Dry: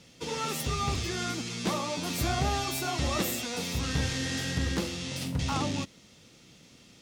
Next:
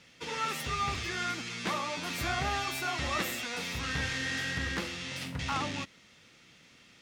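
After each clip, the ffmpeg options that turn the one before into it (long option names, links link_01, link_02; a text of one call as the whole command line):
ffmpeg -i in.wav -af "equalizer=frequency=1800:width=0.68:gain=12,volume=-7.5dB" out.wav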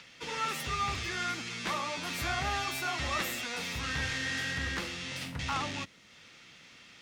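ffmpeg -i in.wav -filter_complex "[0:a]acrossover=split=110|670|6700[link_01][link_02][link_03][link_04];[link_02]asoftclip=type=tanh:threshold=-38dB[link_05];[link_03]acompressor=mode=upward:threshold=-48dB:ratio=2.5[link_06];[link_01][link_05][link_06][link_04]amix=inputs=4:normalize=0" out.wav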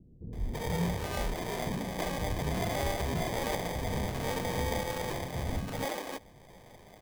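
ffmpeg -i in.wav -filter_complex "[0:a]acrusher=samples=32:mix=1:aa=0.000001,acrossover=split=290[link_01][link_02];[link_02]adelay=330[link_03];[link_01][link_03]amix=inputs=2:normalize=0,volume=2.5dB" out.wav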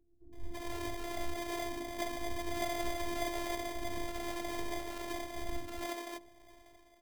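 ffmpeg -i in.wav -af "bandreject=frequency=53.33:width_type=h:width=4,bandreject=frequency=106.66:width_type=h:width=4,bandreject=frequency=159.99:width_type=h:width=4,bandreject=frequency=213.32:width_type=h:width=4,bandreject=frequency=266.65:width_type=h:width=4,bandreject=frequency=319.98:width_type=h:width=4,bandreject=frequency=373.31:width_type=h:width=4,bandreject=frequency=426.64:width_type=h:width=4,bandreject=frequency=479.97:width_type=h:width=4,bandreject=frequency=533.3:width_type=h:width=4,bandreject=frequency=586.63:width_type=h:width=4,bandreject=frequency=639.96:width_type=h:width=4,bandreject=frequency=693.29:width_type=h:width=4,bandreject=frequency=746.62:width_type=h:width=4,bandreject=frequency=799.95:width_type=h:width=4,bandreject=frequency=853.28:width_type=h:width=4,bandreject=frequency=906.61:width_type=h:width=4,bandreject=frequency=959.94:width_type=h:width=4,bandreject=frequency=1013.27:width_type=h:width=4,bandreject=frequency=1066.6:width_type=h:width=4,afftfilt=real='hypot(re,im)*cos(PI*b)':imag='0':win_size=512:overlap=0.75,dynaudnorm=framelen=120:gausssize=7:maxgain=8dB,volume=-7.5dB" out.wav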